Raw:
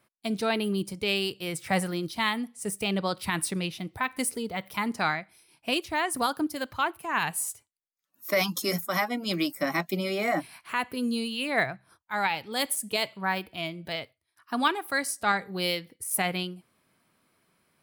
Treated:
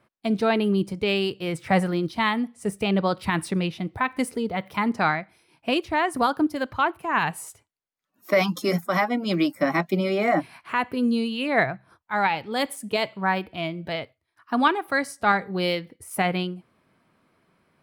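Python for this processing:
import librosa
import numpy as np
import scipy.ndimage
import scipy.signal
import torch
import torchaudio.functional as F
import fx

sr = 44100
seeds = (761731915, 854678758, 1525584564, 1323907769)

y = fx.lowpass(x, sr, hz=1700.0, slope=6)
y = F.gain(torch.from_numpy(y), 6.5).numpy()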